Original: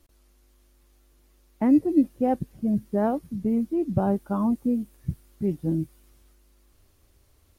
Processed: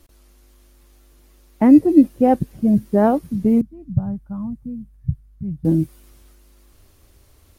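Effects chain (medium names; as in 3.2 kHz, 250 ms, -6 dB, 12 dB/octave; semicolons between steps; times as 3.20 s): 3.61–5.65 s: FFT filter 140 Hz 0 dB, 380 Hz -27 dB, 550 Hz -22 dB, 1.7 kHz -20 dB, 2.9 kHz -25 dB; trim +8.5 dB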